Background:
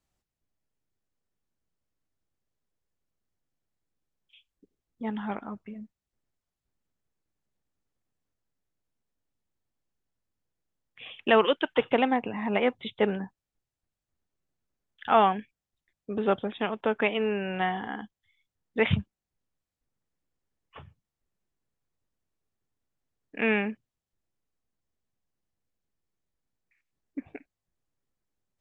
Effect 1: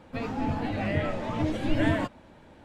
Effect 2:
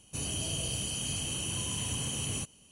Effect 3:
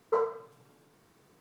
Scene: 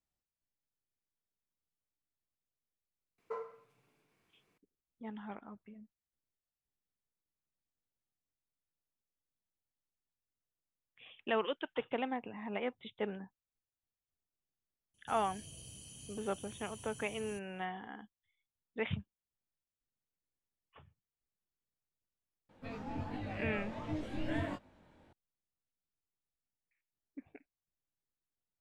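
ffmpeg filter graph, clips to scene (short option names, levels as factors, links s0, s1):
-filter_complex "[0:a]volume=0.237[s0];[3:a]equalizer=f=2400:t=o:w=0.57:g=11.5[s1];[2:a]equalizer=f=1300:t=o:w=2.9:g=-7[s2];[1:a]flanger=delay=19.5:depth=5.6:speed=1.4[s3];[s1]atrim=end=1.4,asetpts=PTS-STARTPTS,volume=0.188,afade=t=in:d=0.004:c=hsin,afade=t=out:st=1.396:d=0.004:c=hsin,adelay=3180[s4];[s2]atrim=end=2.71,asetpts=PTS-STARTPTS,volume=0.15,afade=t=in:d=0.004:c=hsin,afade=t=out:st=2.706:d=0.004:c=hsin,adelay=14940[s5];[s3]atrim=end=2.64,asetpts=PTS-STARTPTS,volume=0.355,afade=t=in:d=0.004:c=hsin,afade=t=out:st=2.636:d=0.004:c=hsin,adelay=22490[s6];[s0][s4][s5][s6]amix=inputs=4:normalize=0"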